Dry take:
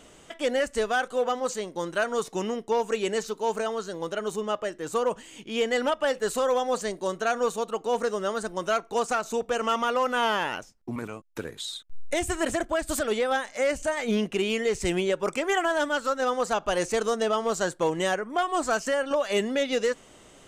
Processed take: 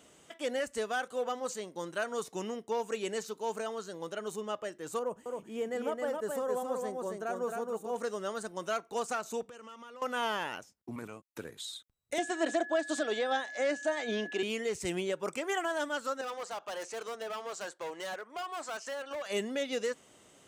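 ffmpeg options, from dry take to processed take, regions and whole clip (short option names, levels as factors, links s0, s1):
-filter_complex "[0:a]asettb=1/sr,asplit=3[s0][s1][s2];[s0]atrim=end=4.994[s3];[s1]atrim=start=4.99:end=7.96,asetpts=PTS-STARTPTS,afade=t=in:d=0.004:c=qsin,afade=t=out:st=2.966:d=0.004:c=qsin,equalizer=f=3900:t=o:w=2.2:g=-14.5,aecho=1:1:267:0.668,atrim=end_sample=130977[s4];[s2]atrim=start=7.956[s5];[s3][s4]acrossfade=d=0.004:c1=hsin:c2=qsin[s6];[s6][s5]acrossfade=d=0.004:c1=qsin:c2=hsin,asettb=1/sr,asplit=3[s7][s8][s9];[s7]atrim=end=9.424[s10];[s8]atrim=start=9.42:end=10.02,asetpts=PTS-STARTPTS,afade=t=in:d=0.004:c=qsin,afade=t=out:st=0.596:d=0.004:c=qsin,lowpass=12000,acompressor=threshold=0.01:ratio=4:attack=3.2:release=140:knee=1:detection=peak,equalizer=f=700:t=o:w=0.32:g=-6.5[s11];[s9]atrim=start=10.016[s12];[s10][s11]acrossfade=d=0.004:c1=hsin:c2=qsin[s13];[s13][s12]acrossfade=d=0.004:c1=qsin:c2=hsin,asettb=1/sr,asplit=3[s14][s15][s16];[s14]atrim=end=12.184[s17];[s15]atrim=start=12.18:end=14.43,asetpts=PTS-STARTPTS,afade=t=in:d=0.004:c=qsin,afade=t=out:st=2.246:d=0.004:c=qsin,aeval=exprs='val(0)+0.02*sin(2*PI*1700*n/s)':c=same,highpass=f=230:w=0.5412,highpass=f=230:w=1.3066,equalizer=f=300:t=q:w=4:g=7,equalizer=f=700:t=q:w=4:g=8,equalizer=f=3700:t=q:w=4:g=7,lowpass=f=7300:w=0.5412,lowpass=f=7300:w=1.3066[s18];[s16]atrim=start=14.426[s19];[s17][s18]acrossfade=d=0.004:c1=hsin:c2=qsin[s20];[s20][s19]acrossfade=d=0.004:c1=qsin:c2=hsin,asettb=1/sr,asplit=3[s21][s22][s23];[s21]atrim=end=16.214[s24];[s22]atrim=start=16.21:end=19.26,asetpts=PTS-STARTPTS,afade=t=in:d=0.004:c=qsin,afade=t=out:st=3.046:d=0.004:c=qsin,highpass=510,lowpass=6400,volume=22.4,asoftclip=hard,volume=0.0447[s25];[s23]atrim=start=19.256[s26];[s24][s25]acrossfade=d=0.004:c1=hsin:c2=qsin[s27];[s27][s26]acrossfade=d=0.004:c1=qsin:c2=hsin,highpass=85,highshelf=f=8700:g=6.5,volume=0.398"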